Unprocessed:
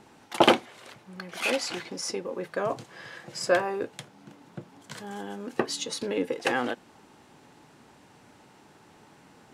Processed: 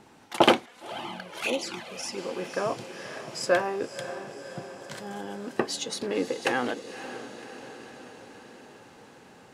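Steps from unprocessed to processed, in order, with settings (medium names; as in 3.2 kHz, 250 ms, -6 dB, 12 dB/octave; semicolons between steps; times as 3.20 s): echo that smears into a reverb 552 ms, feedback 63%, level -12 dB; 0.66–2.18 s: touch-sensitive flanger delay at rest 4.9 ms, full sweep at -23.5 dBFS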